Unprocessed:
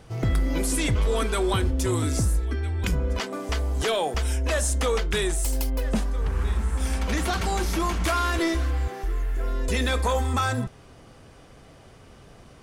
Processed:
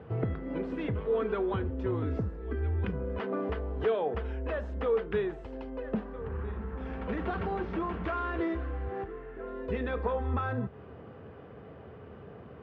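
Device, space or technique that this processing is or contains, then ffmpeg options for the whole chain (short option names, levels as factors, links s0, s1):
bass amplifier: -af "acompressor=threshold=0.0316:ratio=5,highpass=f=74:w=0.5412,highpass=f=74:w=1.3066,equalizer=f=77:t=q:w=4:g=5,equalizer=f=200:t=q:w=4:g=5,equalizer=f=440:t=q:w=4:g=9,equalizer=f=2200:t=q:w=4:g=-6,lowpass=f=2400:w=0.5412,lowpass=f=2400:w=1.3066"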